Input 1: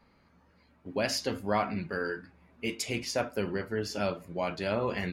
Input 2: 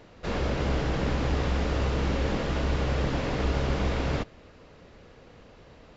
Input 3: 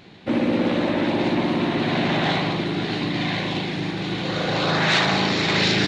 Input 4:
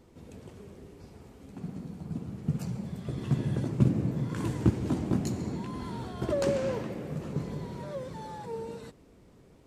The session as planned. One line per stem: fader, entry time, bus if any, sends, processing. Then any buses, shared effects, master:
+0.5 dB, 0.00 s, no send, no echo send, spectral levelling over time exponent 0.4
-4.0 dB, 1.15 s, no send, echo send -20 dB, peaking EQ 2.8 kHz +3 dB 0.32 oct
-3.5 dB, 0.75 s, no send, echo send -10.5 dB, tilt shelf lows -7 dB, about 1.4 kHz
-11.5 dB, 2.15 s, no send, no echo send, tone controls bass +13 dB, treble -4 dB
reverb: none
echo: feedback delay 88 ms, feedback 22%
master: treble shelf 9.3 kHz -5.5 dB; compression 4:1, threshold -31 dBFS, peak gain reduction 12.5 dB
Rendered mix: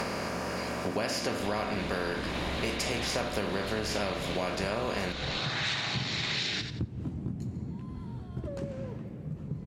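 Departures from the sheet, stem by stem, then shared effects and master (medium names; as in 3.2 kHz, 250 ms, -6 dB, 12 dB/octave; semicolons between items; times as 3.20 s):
stem 1 +0.5 dB -> +8.5 dB; master: missing treble shelf 9.3 kHz -5.5 dB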